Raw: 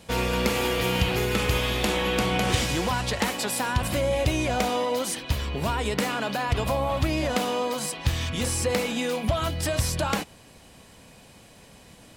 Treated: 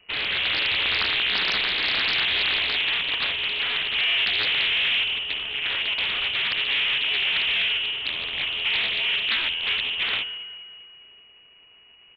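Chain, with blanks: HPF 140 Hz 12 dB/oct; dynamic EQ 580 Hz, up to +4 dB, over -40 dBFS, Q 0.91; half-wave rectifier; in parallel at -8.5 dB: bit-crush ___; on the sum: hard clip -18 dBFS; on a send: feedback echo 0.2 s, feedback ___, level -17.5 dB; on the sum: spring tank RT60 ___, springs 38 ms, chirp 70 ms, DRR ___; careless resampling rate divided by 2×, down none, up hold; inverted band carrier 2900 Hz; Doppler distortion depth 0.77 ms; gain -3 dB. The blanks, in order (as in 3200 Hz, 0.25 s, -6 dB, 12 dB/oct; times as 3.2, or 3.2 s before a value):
6-bit, 56%, 1.2 s, 14.5 dB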